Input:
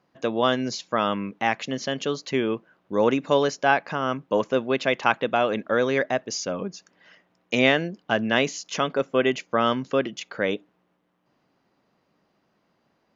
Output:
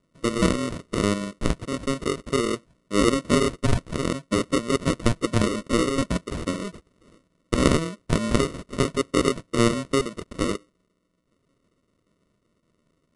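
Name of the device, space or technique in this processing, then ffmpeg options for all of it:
crushed at another speed: -af "asetrate=88200,aresample=44100,acrusher=samples=27:mix=1:aa=0.000001,asetrate=22050,aresample=44100"

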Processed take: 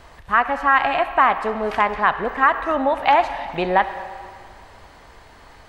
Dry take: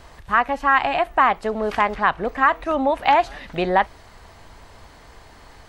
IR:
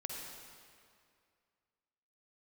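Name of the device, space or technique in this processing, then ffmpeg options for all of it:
filtered reverb send: -filter_complex "[0:a]asplit=2[link_01][link_02];[link_02]highpass=frequency=580:poles=1,lowpass=3900[link_03];[1:a]atrim=start_sample=2205[link_04];[link_03][link_04]afir=irnorm=-1:irlink=0,volume=-3.5dB[link_05];[link_01][link_05]amix=inputs=2:normalize=0,volume=-2dB"

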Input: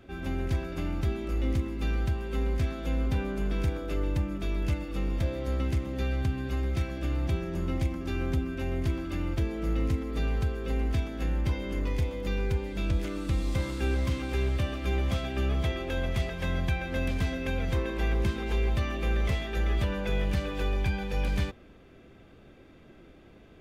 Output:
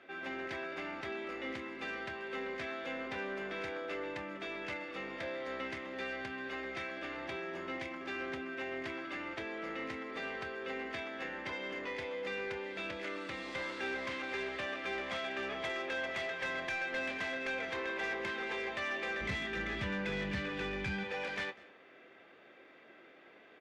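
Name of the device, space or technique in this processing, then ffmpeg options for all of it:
intercom: -filter_complex "[0:a]asplit=3[link_01][link_02][link_03];[link_01]afade=type=out:start_time=19.2:duration=0.02[link_04];[link_02]asubboost=boost=10.5:cutoff=180,afade=type=in:start_time=19.2:duration=0.02,afade=type=out:start_time=21.03:duration=0.02[link_05];[link_03]afade=type=in:start_time=21.03:duration=0.02[link_06];[link_04][link_05][link_06]amix=inputs=3:normalize=0,highpass=490,lowpass=3900,equalizer=frequency=1900:width_type=o:width=0.53:gain=7,asoftclip=type=tanh:threshold=-30dB,asplit=2[link_07][link_08];[link_08]adelay=26,volume=-12dB[link_09];[link_07][link_09]amix=inputs=2:normalize=0,aecho=1:1:196:0.075"

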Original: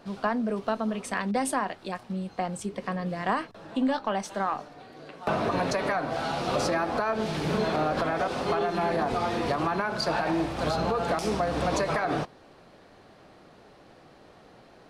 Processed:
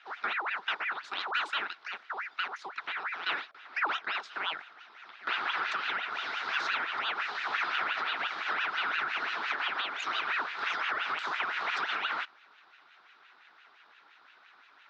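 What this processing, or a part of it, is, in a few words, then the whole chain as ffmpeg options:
voice changer toy: -af "aeval=exprs='val(0)*sin(2*PI*1400*n/s+1400*0.6/5.8*sin(2*PI*5.8*n/s))':channel_layout=same,highpass=520,equalizer=frequency=530:width_type=q:width=4:gain=-9,equalizer=frequency=1400:width_type=q:width=4:gain=7,equalizer=frequency=3800:width_type=q:width=4:gain=6,lowpass=frequency=5000:width=0.5412,lowpass=frequency=5000:width=1.3066,volume=-4dB"

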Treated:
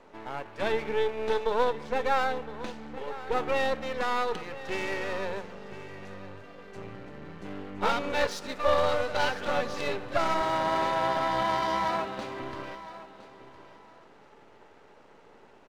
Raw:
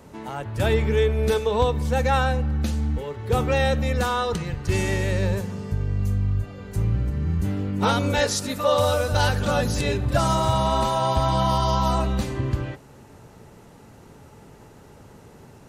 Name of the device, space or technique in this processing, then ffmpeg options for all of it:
crystal radio: -filter_complex "[0:a]highpass=390,lowpass=3300,aeval=exprs='if(lt(val(0),0),0.251*val(0),val(0))':channel_layout=same,asettb=1/sr,asplit=3[link_01][link_02][link_03];[link_01]atrim=end=10.414[link_04];[link_02]atrim=start=10.41:end=12.42,asetpts=PTS-STARTPTS,afade=type=in:duration=0.004:curve=qsin,afade=type=out:start_time=2.006:duration=0.004:curve=qsin,highpass=54[link_05];[link_03]atrim=start=12.416[link_06];[link_04][link_05]acrossfade=duration=0.004:curve1=hsin:curve2=qsin[link_07];[link_07][link_06]acrossfade=duration=0.004:curve1=qsin:curve2=hsin,aecho=1:1:1012|2024:0.168|0.0403"

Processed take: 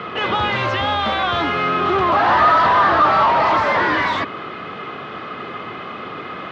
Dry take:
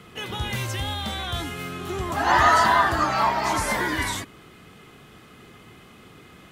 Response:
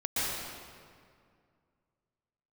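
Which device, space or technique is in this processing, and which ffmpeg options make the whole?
overdrive pedal into a guitar cabinet: -filter_complex "[0:a]asplit=2[link_01][link_02];[link_02]highpass=frequency=720:poles=1,volume=32dB,asoftclip=type=tanh:threshold=-5.5dB[link_03];[link_01][link_03]amix=inputs=2:normalize=0,lowpass=frequency=1200:poles=1,volume=-6dB,highpass=78,equalizer=frequency=88:width_type=q:width=4:gain=4,equalizer=frequency=590:width_type=q:width=4:gain=4,equalizer=frequency=1200:width_type=q:width=4:gain=6,lowpass=frequency=4500:width=0.5412,lowpass=frequency=4500:width=1.3066,volume=-2.5dB"

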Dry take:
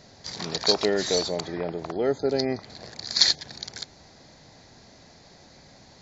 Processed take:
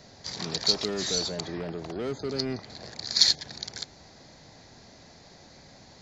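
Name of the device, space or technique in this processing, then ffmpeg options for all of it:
one-band saturation: -filter_complex "[0:a]acrossover=split=270|2800[link_01][link_02][link_03];[link_02]asoftclip=type=tanh:threshold=-34.5dB[link_04];[link_01][link_04][link_03]amix=inputs=3:normalize=0"

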